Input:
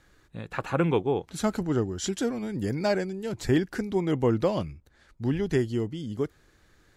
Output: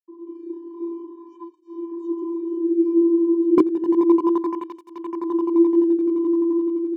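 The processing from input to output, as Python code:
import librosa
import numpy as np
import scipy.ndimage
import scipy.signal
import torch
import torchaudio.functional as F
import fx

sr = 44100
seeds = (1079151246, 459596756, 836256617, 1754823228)

y = fx.tape_start_head(x, sr, length_s=1.79)
y = np.sign(y) * np.maximum(np.abs(y) - 10.0 ** (-53.0 / 20.0), 0.0)
y = y + 10.0 ** (-9.5 / 20.0) * np.pad(y, (int(307 * sr / 1000.0), 0))[:len(y)]
y = fx.quant_dither(y, sr, seeds[0], bits=6, dither='none')
y = fx.vocoder(y, sr, bands=32, carrier='square', carrier_hz=338.0)
y = (np.mod(10.0 ** (11.5 / 20.0) * y + 1.0, 2.0) - 1.0) / 10.0 ** (11.5 / 20.0)
y = scipy.signal.savgol_filter(y, 65, 4, mode='constant')
y = fx.low_shelf(y, sr, hz=470.0, db=9.0)
y = fx.echo_swell(y, sr, ms=86, loudest=8, wet_db=-12.5)
y = fx.flanger_cancel(y, sr, hz=0.31, depth_ms=1.4)
y = y * 10.0 ** (3.5 / 20.0)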